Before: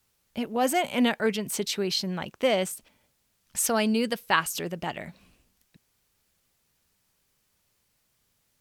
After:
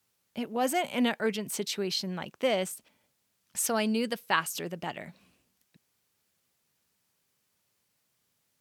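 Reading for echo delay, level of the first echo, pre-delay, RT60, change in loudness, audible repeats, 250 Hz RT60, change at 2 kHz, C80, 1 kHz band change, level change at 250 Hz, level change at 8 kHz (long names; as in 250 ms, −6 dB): no echo audible, no echo audible, no reverb audible, no reverb audible, −3.5 dB, no echo audible, no reverb audible, −3.5 dB, no reverb audible, −3.5 dB, −3.5 dB, −3.5 dB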